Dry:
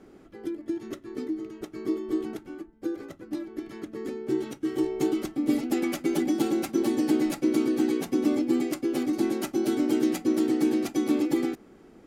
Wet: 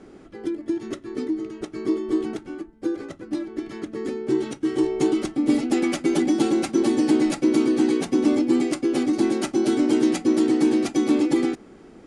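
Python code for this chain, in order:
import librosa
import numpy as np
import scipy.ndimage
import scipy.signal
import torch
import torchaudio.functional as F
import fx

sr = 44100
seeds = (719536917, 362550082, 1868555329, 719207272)

p1 = scipy.signal.sosfilt(scipy.signal.ellip(4, 1.0, 50, 10000.0, 'lowpass', fs=sr, output='sos'), x)
p2 = 10.0 ** (-23.0 / 20.0) * np.tanh(p1 / 10.0 ** (-23.0 / 20.0))
p3 = p1 + (p2 * 10.0 ** (-9.0 / 20.0))
y = p3 * 10.0 ** (4.0 / 20.0)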